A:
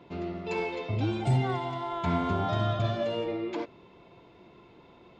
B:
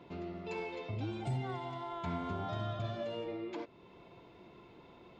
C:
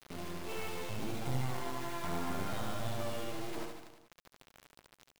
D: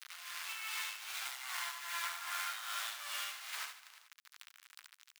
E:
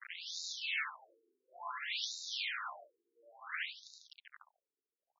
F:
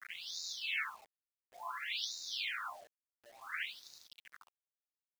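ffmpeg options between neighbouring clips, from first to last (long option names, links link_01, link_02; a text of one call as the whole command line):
ffmpeg -i in.wav -af "acompressor=threshold=-47dB:ratio=1.5,volume=-2dB" out.wav
ffmpeg -i in.wav -filter_complex "[0:a]acrusher=bits=5:dc=4:mix=0:aa=0.000001,asplit=2[link_01][link_02];[link_02]aecho=0:1:70|147|231.7|324.9|427.4:0.631|0.398|0.251|0.158|0.1[link_03];[link_01][link_03]amix=inputs=2:normalize=0,volume=2dB" out.wav
ffmpeg -i in.wav -af "tremolo=f=2.5:d=0.58,highpass=frequency=1300:width=0.5412,highpass=frequency=1300:width=1.3066,volume=8.5dB" out.wav
ffmpeg -i in.wav -af "afftfilt=real='re*between(b*sr/1024,310*pow(5200/310,0.5+0.5*sin(2*PI*0.57*pts/sr))/1.41,310*pow(5200/310,0.5+0.5*sin(2*PI*0.57*pts/sr))*1.41)':imag='im*between(b*sr/1024,310*pow(5200/310,0.5+0.5*sin(2*PI*0.57*pts/sr))/1.41,310*pow(5200/310,0.5+0.5*sin(2*PI*0.57*pts/sr))*1.41)':win_size=1024:overlap=0.75,volume=7.5dB" out.wav
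ffmpeg -i in.wav -af "acrusher=bits=9:mix=0:aa=0.000001" out.wav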